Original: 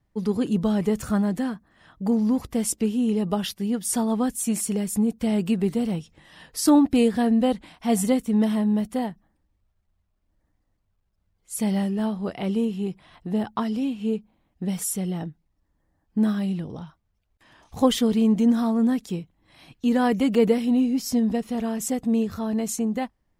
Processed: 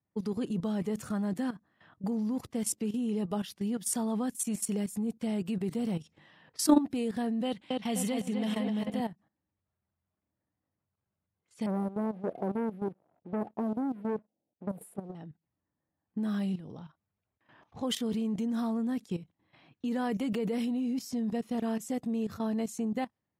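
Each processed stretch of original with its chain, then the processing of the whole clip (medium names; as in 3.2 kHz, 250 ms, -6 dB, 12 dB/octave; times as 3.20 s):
7.45–9.00 s: peaking EQ 2.9 kHz +8 dB 1.1 oct + filtered feedback delay 254 ms, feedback 55%, low-pass 4.6 kHz, level -5 dB
11.66–15.15 s: inverse Chebyshev band-stop 1.2–6.2 kHz + waveshaping leveller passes 2 + tone controls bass -12 dB, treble -12 dB
whole clip: high-pass 94 Hz 24 dB/octave; level held to a coarse grid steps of 14 dB; level-controlled noise filter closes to 2.2 kHz, open at -29.5 dBFS; trim -2.5 dB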